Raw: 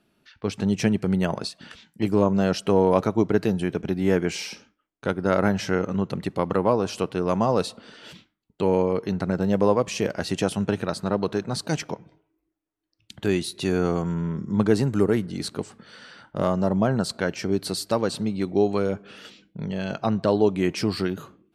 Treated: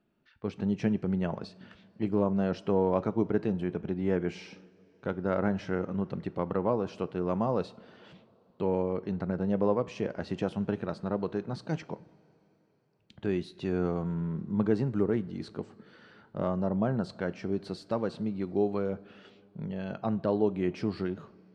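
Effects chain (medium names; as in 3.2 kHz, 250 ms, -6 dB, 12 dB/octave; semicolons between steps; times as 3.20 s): tape spacing loss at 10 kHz 25 dB; two-slope reverb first 0.39 s, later 4.3 s, from -18 dB, DRR 16 dB; trim -6 dB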